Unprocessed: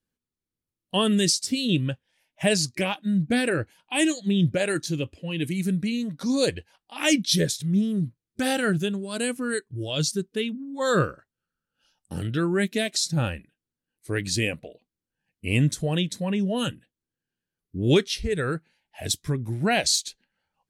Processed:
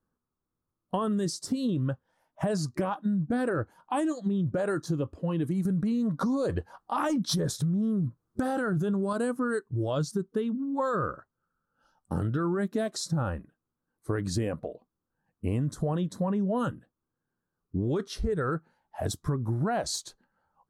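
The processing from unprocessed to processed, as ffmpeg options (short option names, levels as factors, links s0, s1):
-filter_complex "[0:a]asettb=1/sr,asplit=3[s0][s1][s2];[s0]atrim=end=5.654[s3];[s1]atrim=start=5.65:end=9.13,asetpts=PTS-STARTPTS,afade=t=in:d=0.004:c=qsin,afade=t=out:st=3.476:d=0.004:c=qsin,acontrast=82[s4];[s2]atrim=start=9.126[s5];[s3][s4]acrossfade=d=0.004:c1=hsin:c2=qsin[s6];[s6][s5]acrossfade=d=0.004:c1=qsin:c2=hsin,highshelf=f=1700:t=q:w=3:g=-12,alimiter=limit=0.112:level=0:latency=1:release=12,acompressor=threshold=0.0316:ratio=6,volume=1.68"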